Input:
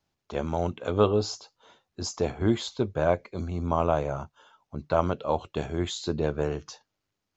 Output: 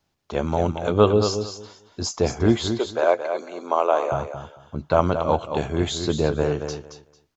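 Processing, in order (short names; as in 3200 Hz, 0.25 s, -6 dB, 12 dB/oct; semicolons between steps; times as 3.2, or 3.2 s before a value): 2.65–4.12 HPF 370 Hz 24 dB/oct; feedback echo 0.224 s, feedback 19%, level -8 dB; gain +5.5 dB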